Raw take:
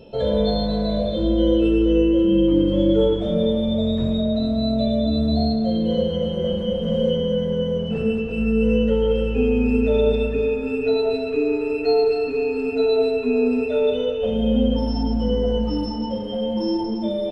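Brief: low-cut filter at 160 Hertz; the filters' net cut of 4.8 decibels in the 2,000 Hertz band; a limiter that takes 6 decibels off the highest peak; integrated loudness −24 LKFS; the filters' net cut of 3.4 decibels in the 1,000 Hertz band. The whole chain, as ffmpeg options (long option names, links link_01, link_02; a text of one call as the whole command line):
ffmpeg -i in.wav -af "highpass=160,equalizer=frequency=1000:width_type=o:gain=-4,equalizer=frequency=2000:width_type=o:gain=-7,volume=-0.5dB,alimiter=limit=-15.5dB:level=0:latency=1" out.wav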